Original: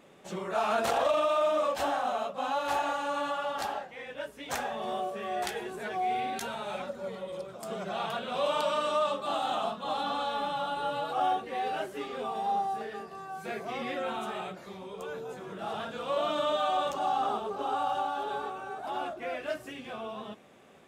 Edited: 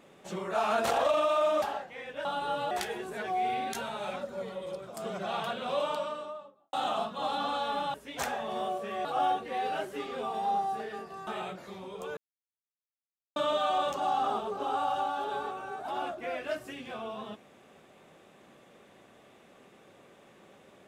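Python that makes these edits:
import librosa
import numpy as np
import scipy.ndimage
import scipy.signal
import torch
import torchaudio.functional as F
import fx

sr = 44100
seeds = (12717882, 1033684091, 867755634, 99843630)

y = fx.studio_fade_out(x, sr, start_s=8.17, length_s=1.22)
y = fx.edit(y, sr, fx.cut(start_s=1.62, length_s=2.01),
    fx.swap(start_s=4.26, length_s=1.11, other_s=10.6, other_length_s=0.46),
    fx.cut(start_s=13.28, length_s=0.98),
    fx.silence(start_s=15.16, length_s=1.19), tone=tone)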